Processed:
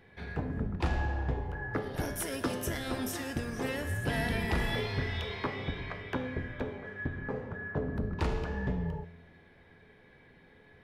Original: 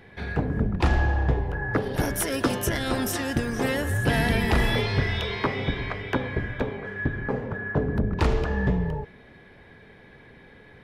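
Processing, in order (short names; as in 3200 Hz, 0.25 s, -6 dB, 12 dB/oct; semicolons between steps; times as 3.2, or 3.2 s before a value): resonator 85 Hz, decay 1 s, harmonics all, mix 70%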